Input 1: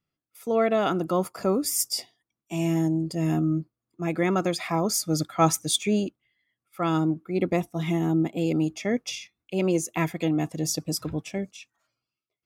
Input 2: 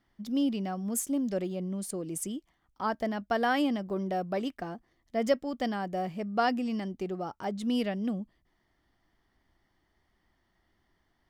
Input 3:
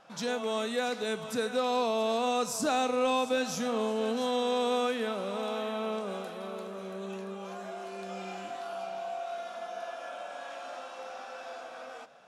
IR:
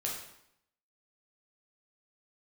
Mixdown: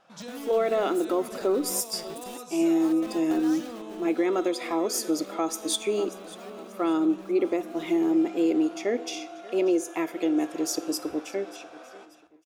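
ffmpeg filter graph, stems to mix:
-filter_complex "[0:a]lowshelf=frequency=230:width_type=q:width=3:gain=-13,volume=-3.5dB,asplit=3[link_01][link_02][link_03];[link_02]volume=-14.5dB[link_04];[link_03]volume=-18.5dB[link_05];[1:a]acompressor=threshold=-39dB:ratio=1.5,acrusher=bits=5:mix=0:aa=0.000001,volume=-8dB,afade=type=out:start_time=3.44:duration=0.74:silence=0.298538[link_06];[2:a]acompressor=threshold=-35dB:ratio=6,volume=-6.5dB,asplit=2[link_07][link_08];[link_08]volume=-8dB[link_09];[3:a]atrim=start_sample=2205[link_10];[link_04][link_09]amix=inputs=2:normalize=0[link_11];[link_11][link_10]afir=irnorm=-1:irlink=0[link_12];[link_05]aecho=0:1:587|1174|1761|2348|2935:1|0.36|0.13|0.0467|0.0168[link_13];[link_01][link_06][link_07][link_12][link_13]amix=inputs=5:normalize=0,alimiter=limit=-15.5dB:level=0:latency=1:release=257"

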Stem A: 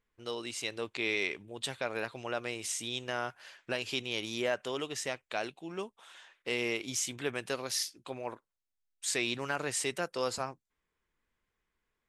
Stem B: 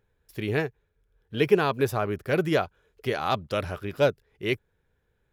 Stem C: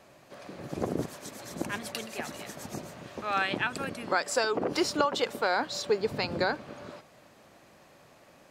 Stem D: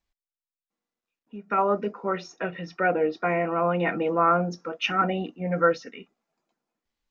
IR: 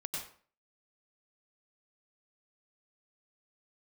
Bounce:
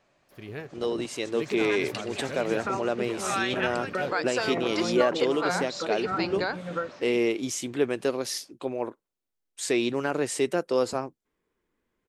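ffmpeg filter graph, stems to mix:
-filter_complex "[0:a]equalizer=frequency=330:width_type=o:width=2.2:gain=12.5,adelay=550,volume=0dB[link_01];[1:a]volume=-12dB[link_02];[2:a]lowpass=frequency=8300:width=0.5412,lowpass=frequency=8300:width=1.3066,equalizer=frequency=2200:width_type=o:width=2:gain=3.5,dynaudnorm=framelen=160:gausssize=17:maxgain=13dB,volume=-12.5dB[link_03];[3:a]acompressor=threshold=-29dB:ratio=6,tremolo=f=3.2:d=0.68,adelay=1150,volume=1.5dB[link_04];[link_01][link_02][link_03][link_04]amix=inputs=4:normalize=0"

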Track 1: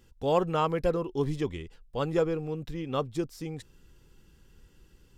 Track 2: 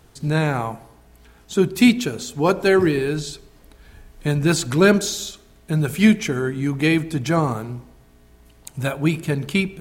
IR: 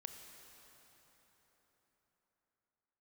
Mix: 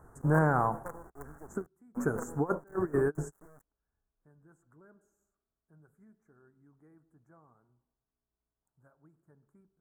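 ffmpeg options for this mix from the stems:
-filter_complex "[0:a]highpass=frequency=52:width=0.5412,highpass=frequency=52:width=1.3066,acrusher=bits=4:dc=4:mix=0:aa=0.000001,volume=-17dB,asplit=2[link_01][link_02];[1:a]highshelf=frequency=3900:gain=-7.5,alimiter=limit=-11dB:level=0:latency=1:release=231,volume=-5dB[link_03];[link_02]apad=whole_len=432596[link_04];[link_03][link_04]sidechaingate=range=-36dB:threshold=-53dB:ratio=16:detection=peak[link_05];[link_01][link_05]amix=inputs=2:normalize=0,asuperstop=centerf=3400:order=8:qfactor=0.6,equalizer=frequency=1400:width=0.72:gain=7"

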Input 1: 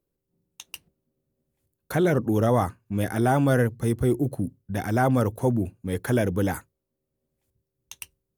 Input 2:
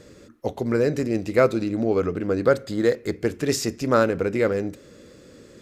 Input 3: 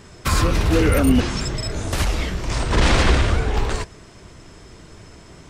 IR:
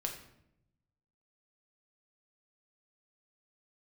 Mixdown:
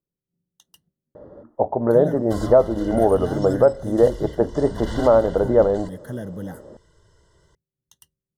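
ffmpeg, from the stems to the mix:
-filter_complex "[0:a]equalizer=frequency=170:width=1.5:gain=10,volume=-12.5dB[link_01];[1:a]lowpass=frequency=870:width_type=q:width=3.9,equalizer=frequency=620:width_type=o:width=0.32:gain=9.5,adelay=1150,volume=1dB[link_02];[2:a]aecho=1:1:2:0.84,adelay=2050,volume=-18dB[link_03];[link_01][link_02][link_03]amix=inputs=3:normalize=0,asuperstop=centerf=2400:order=20:qfactor=3.2,alimiter=limit=-4.5dB:level=0:latency=1:release=327"

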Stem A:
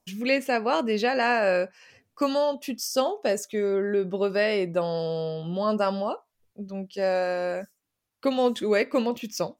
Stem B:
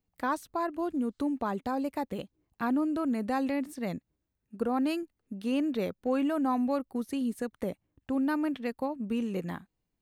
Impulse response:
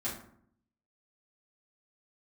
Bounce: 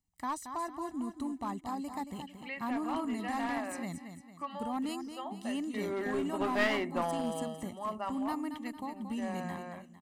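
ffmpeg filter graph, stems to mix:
-filter_complex "[0:a]lowpass=5400,acrossover=split=390 3100:gain=0.178 1 0.0631[link_01][link_02][link_03];[link_01][link_02][link_03]amix=inputs=3:normalize=0,adelay=2200,volume=-1.5dB,afade=type=in:start_time=5.61:duration=0.39:silence=0.237137,afade=type=out:start_time=7.41:duration=0.29:silence=0.316228,asplit=2[link_04][link_05];[link_05]volume=-18.5dB[link_06];[1:a]equalizer=frequency=7700:width_type=o:width=0.87:gain=12,volume=-8dB,asplit=2[link_07][link_08];[link_08]volume=-8.5dB[link_09];[2:a]atrim=start_sample=2205[link_10];[link_06][link_10]afir=irnorm=-1:irlink=0[link_11];[link_09]aecho=0:1:226|452|678|904|1130|1356:1|0.43|0.185|0.0795|0.0342|0.0147[link_12];[link_04][link_07][link_11][link_12]amix=inputs=4:normalize=0,aecho=1:1:1:0.72,aeval=exprs='clip(val(0),-1,0.0316)':channel_layout=same"

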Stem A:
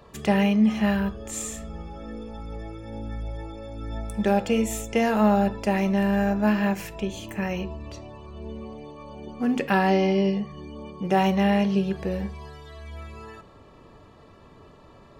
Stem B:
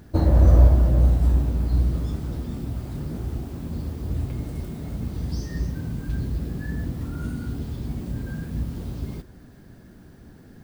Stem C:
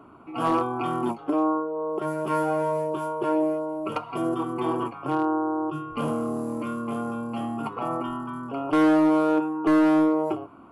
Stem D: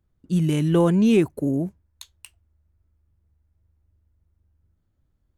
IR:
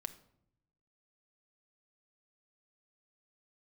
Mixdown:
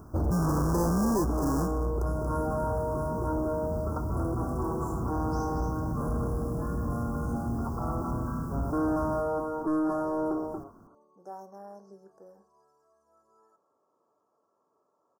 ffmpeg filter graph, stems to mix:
-filter_complex "[0:a]highpass=440,adelay=150,volume=-19dB[link_01];[1:a]volume=-1.5dB,asplit=2[link_02][link_03];[link_03]volume=-10.5dB[link_04];[2:a]volume=-5dB,asplit=2[link_05][link_06];[link_06]volume=-4.5dB[link_07];[3:a]acrusher=samples=32:mix=1:aa=0.000001,volume=0.5dB,asplit=3[link_08][link_09][link_10];[link_09]volume=-17.5dB[link_11];[link_10]apad=whole_len=469031[link_12];[link_02][link_12]sidechaincompress=threshold=-32dB:ratio=8:attack=16:release=704[link_13];[link_04][link_07][link_11]amix=inputs=3:normalize=0,aecho=0:1:233:1[link_14];[link_01][link_13][link_05][link_08][link_14]amix=inputs=5:normalize=0,asoftclip=type=tanh:threshold=-23.5dB,asuperstop=centerf=2800:order=12:qfactor=0.74"

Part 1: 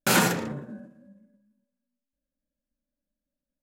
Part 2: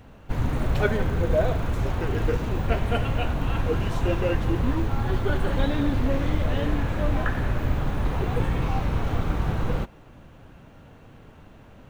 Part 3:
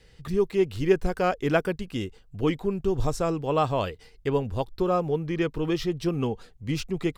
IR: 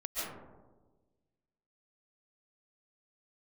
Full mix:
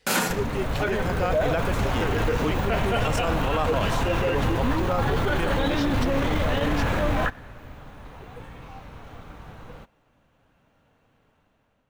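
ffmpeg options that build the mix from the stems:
-filter_complex "[0:a]highpass=200,volume=-2dB[link_01];[1:a]dynaudnorm=framelen=490:gausssize=5:maxgain=11dB,volume=1.5dB[link_02];[2:a]dynaudnorm=framelen=220:gausssize=9:maxgain=7dB,volume=-2.5dB,asplit=2[link_03][link_04];[link_04]apad=whole_len=524638[link_05];[link_02][link_05]sidechaingate=range=-22dB:threshold=-51dB:ratio=16:detection=peak[link_06];[link_06][link_03]amix=inputs=2:normalize=0,lowshelf=frequency=260:gain=-8.5,alimiter=limit=-15dB:level=0:latency=1:release=17,volume=0dB[link_07];[link_01][link_07]amix=inputs=2:normalize=0,equalizer=frequency=360:width=6.8:gain=-6"

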